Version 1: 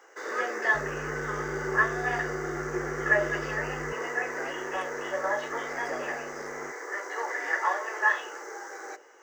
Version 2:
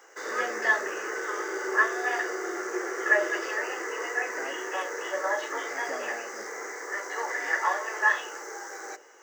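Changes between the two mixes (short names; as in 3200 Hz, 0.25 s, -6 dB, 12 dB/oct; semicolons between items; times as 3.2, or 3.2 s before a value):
first sound: add high shelf 3800 Hz +7 dB; second sound: muted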